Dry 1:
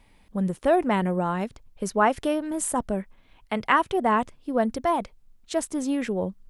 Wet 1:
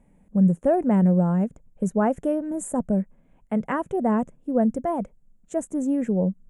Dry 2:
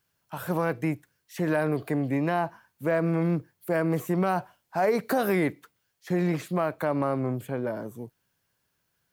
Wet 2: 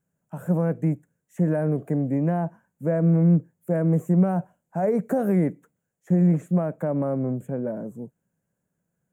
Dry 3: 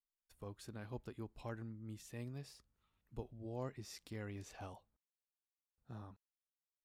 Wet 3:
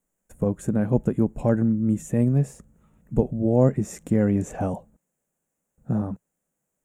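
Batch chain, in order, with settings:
FFT filter 110 Hz 0 dB, 170 Hz +12 dB, 360 Hz +1 dB, 540 Hz +5 dB, 1.1 kHz -8 dB, 1.6 kHz -6 dB, 2.7 kHz -14 dB, 4.7 kHz -27 dB, 7 kHz -1 dB, 13 kHz -10 dB; normalise loudness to -24 LUFS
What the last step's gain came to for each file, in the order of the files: -2.0 dB, -2.5 dB, +21.5 dB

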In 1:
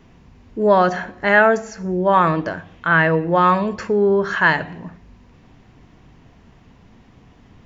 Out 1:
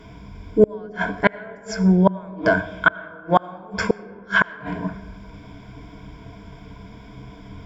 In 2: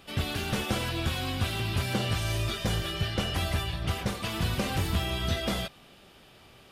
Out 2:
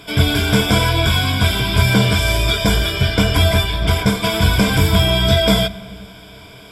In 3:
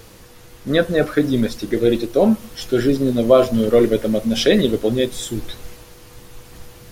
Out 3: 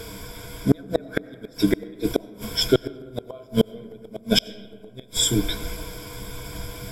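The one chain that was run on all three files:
rippled EQ curve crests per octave 1.7, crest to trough 15 dB; inverted gate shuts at -8 dBFS, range -37 dB; algorithmic reverb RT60 2.3 s, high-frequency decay 0.35×, pre-delay 50 ms, DRR 18.5 dB; peak normalisation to -1.5 dBFS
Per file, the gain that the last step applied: +5.0 dB, +11.5 dB, +4.0 dB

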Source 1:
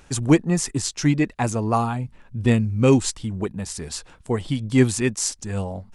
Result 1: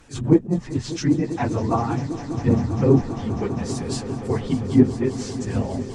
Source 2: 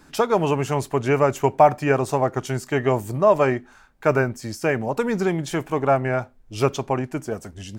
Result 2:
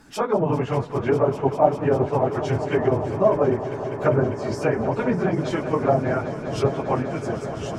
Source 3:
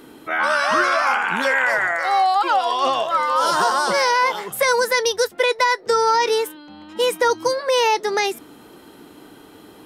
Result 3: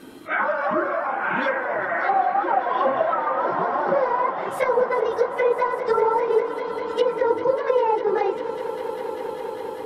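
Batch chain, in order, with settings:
phase randomisation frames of 50 ms; low-pass that closes with the level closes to 760 Hz, closed at -15 dBFS; on a send: echo with a slow build-up 199 ms, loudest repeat 5, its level -16 dB; on the sum: attacks held to a fixed rise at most 280 dB/s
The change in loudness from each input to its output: 0.0 LU, -1.0 LU, -4.0 LU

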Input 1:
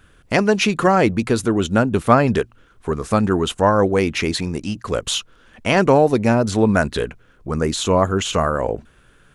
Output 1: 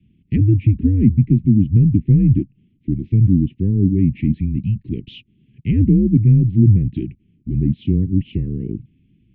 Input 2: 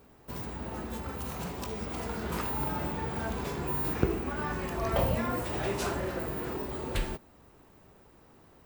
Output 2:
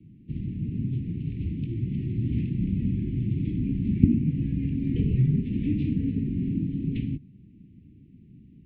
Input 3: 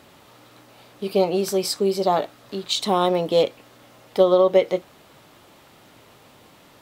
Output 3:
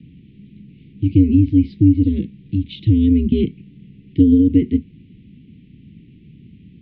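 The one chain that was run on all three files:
inverse Chebyshev band-stop 700–1600 Hz, stop band 60 dB; mistuned SSB -100 Hz 200–2200 Hz; low-pass that closes with the level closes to 1.4 kHz, closed at -22 dBFS; peak normalisation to -2 dBFS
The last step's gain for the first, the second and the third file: +9.5 dB, +15.5 dB, +17.0 dB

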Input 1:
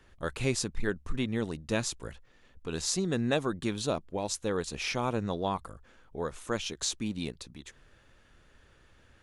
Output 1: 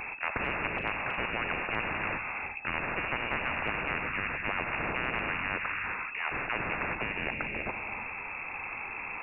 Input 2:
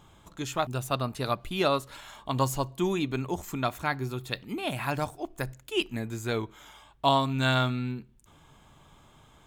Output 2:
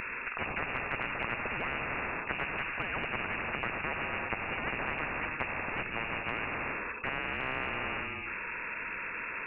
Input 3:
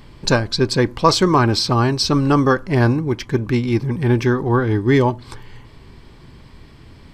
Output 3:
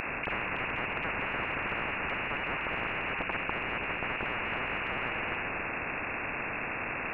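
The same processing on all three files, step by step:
octave divider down 1 oct, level -6 dB; bass shelf 320 Hz +5 dB; gated-style reverb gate 400 ms flat, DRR 10 dB; overload inside the chain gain 15 dB; frequency inversion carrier 2.6 kHz; peak limiter -16 dBFS; spectrum-flattening compressor 10:1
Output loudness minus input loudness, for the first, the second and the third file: +0.5 LU, -4.5 LU, -15.0 LU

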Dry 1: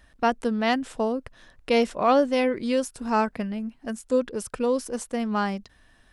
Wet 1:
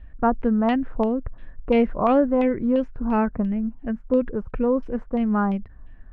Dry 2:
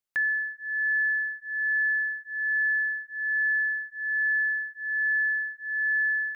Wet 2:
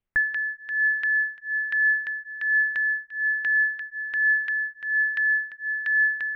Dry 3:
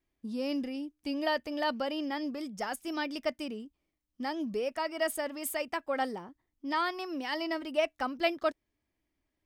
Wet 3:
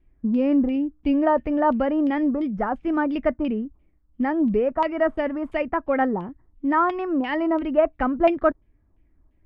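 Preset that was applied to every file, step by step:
tilt EQ -4.5 dB/octave; LFO low-pass saw down 2.9 Hz 1–3 kHz; normalise loudness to -23 LUFS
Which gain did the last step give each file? -4.0 dB, +1.5 dB, +5.5 dB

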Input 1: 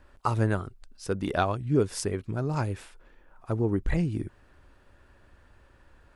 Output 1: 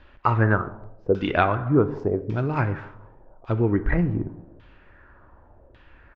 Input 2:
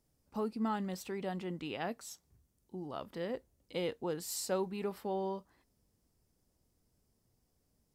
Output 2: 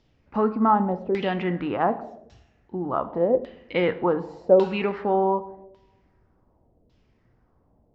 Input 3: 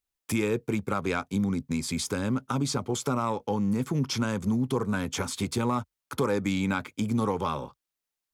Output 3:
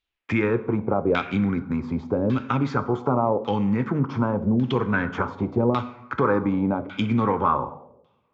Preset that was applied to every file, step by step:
resampled via 16 kHz; two-slope reverb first 0.91 s, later 2.3 s, from -24 dB, DRR 9.5 dB; LFO low-pass saw down 0.87 Hz 520–3500 Hz; normalise loudness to -24 LUFS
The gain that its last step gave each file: +4.0 dB, +12.5 dB, +4.0 dB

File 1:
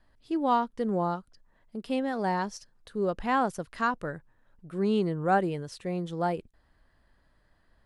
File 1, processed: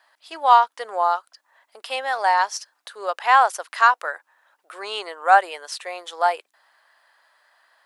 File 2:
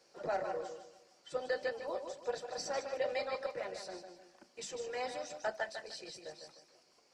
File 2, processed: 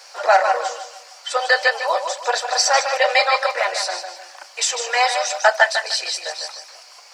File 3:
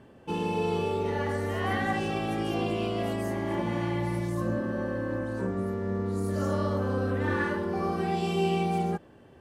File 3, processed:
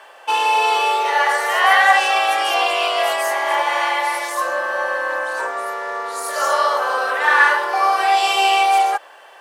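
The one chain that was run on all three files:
hum 60 Hz, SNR 31 dB; inverse Chebyshev high-pass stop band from 160 Hz, stop band 70 dB; peak normalisation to -1.5 dBFS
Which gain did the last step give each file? +13.0 dB, +25.5 dB, +19.5 dB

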